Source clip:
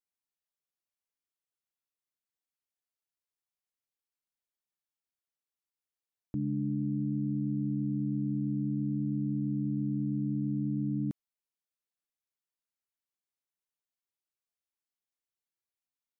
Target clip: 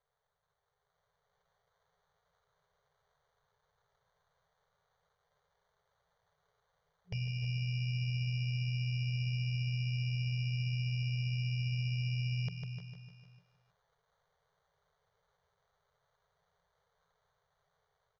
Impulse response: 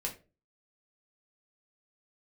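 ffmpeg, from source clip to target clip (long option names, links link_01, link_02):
-filter_complex "[0:a]lowshelf=frequency=120:gain=-8.5,bandreject=frequency=91.74:width_type=h:width=4,bandreject=frequency=183.48:width_type=h:width=4,bandreject=frequency=275.22:width_type=h:width=4,bandreject=frequency=366.96:width_type=h:width=4,asplit=2[link_01][link_02];[link_02]aecho=0:1:134|268|402|536|670|804:0.251|0.138|0.076|0.0418|0.023|0.0126[link_03];[link_01][link_03]amix=inputs=2:normalize=0,adynamicequalizer=threshold=0.00355:dfrequency=230:dqfactor=3.2:tfrequency=230:tqfactor=3.2:attack=5:release=100:ratio=0.375:range=3:mode=cutabove:tftype=bell,acompressor=threshold=-39dB:ratio=6,acrusher=samples=15:mix=1:aa=0.000001,aresample=16000,aresample=44100,alimiter=level_in=14.5dB:limit=-24dB:level=0:latency=1:release=31,volume=-14.5dB,afftfilt=real='re*(1-between(b*sr/4096,200,450))':imag='im*(1-between(b*sr/4096,200,450))':win_size=4096:overlap=0.75,dynaudnorm=framelen=180:gausssize=11:maxgain=6.5dB,asplit=2[link_04][link_05];[link_05]aecho=0:1:283:0.237[link_06];[link_04][link_06]amix=inputs=2:normalize=0,asetrate=39249,aresample=44100,volume=8.5dB"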